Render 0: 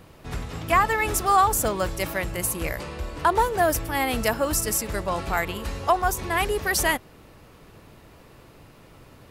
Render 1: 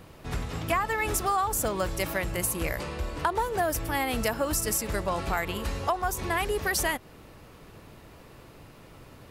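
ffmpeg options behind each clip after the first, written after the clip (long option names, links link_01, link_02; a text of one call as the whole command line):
ffmpeg -i in.wav -af "acompressor=threshold=-24dB:ratio=4" out.wav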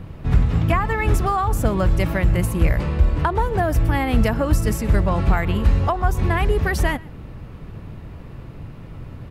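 ffmpeg -i in.wav -af "bass=frequency=250:gain=13,treble=frequency=4000:gain=-11,aecho=1:1:123:0.0668,volume=4.5dB" out.wav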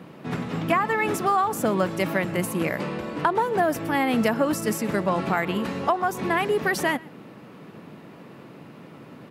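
ffmpeg -i in.wav -af "highpass=frequency=190:width=0.5412,highpass=frequency=190:width=1.3066" out.wav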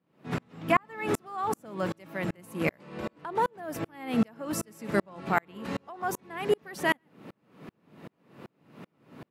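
ffmpeg -i in.wav -af "aeval=exprs='val(0)*pow(10,-39*if(lt(mod(-2.6*n/s,1),2*abs(-2.6)/1000),1-mod(-2.6*n/s,1)/(2*abs(-2.6)/1000),(mod(-2.6*n/s,1)-2*abs(-2.6)/1000)/(1-2*abs(-2.6)/1000))/20)':channel_layout=same,volume=2.5dB" out.wav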